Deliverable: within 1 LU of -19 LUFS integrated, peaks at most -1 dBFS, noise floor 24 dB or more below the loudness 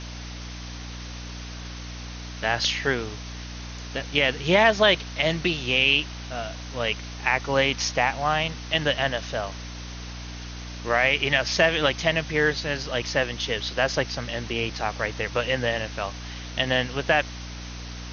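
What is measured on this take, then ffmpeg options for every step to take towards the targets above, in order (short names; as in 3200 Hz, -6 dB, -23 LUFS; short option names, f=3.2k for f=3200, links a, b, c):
hum 60 Hz; harmonics up to 300 Hz; hum level -35 dBFS; noise floor -37 dBFS; noise floor target -48 dBFS; loudness -24.0 LUFS; peak -3.5 dBFS; loudness target -19.0 LUFS
-> -af "bandreject=f=60:t=h:w=6,bandreject=f=120:t=h:w=6,bandreject=f=180:t=h:w=6,bandreject=f=240:t=h:w=6,bandreject=f=300:t=h:w=6"
-af "afftdn=nr=11:nf=-37"
-af "volume=5dB,alimiter=limit=-1dB:level=0:latency=1"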